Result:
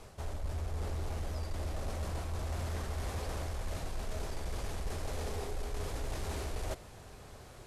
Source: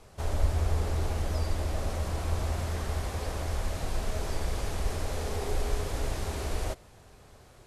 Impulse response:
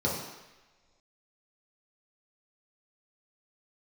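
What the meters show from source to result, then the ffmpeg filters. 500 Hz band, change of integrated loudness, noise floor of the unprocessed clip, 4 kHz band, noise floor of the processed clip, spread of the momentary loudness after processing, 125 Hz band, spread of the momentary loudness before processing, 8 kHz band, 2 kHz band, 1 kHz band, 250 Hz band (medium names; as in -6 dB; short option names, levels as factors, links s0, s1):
-6.0 dB, -7.0 dB, -54 dBFS, -6.0 dB, -52 dBFS, 4 LU, -7.0 dB, 5 LU, -6.0 dB, -6.0 dB, -6.0 dB, -6.0 dB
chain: -af "areverse,acompressor=threshold=0.0178:ratio=6,areverse,asoftclip=type=tanh:threshold=0.0282,volume=1.41"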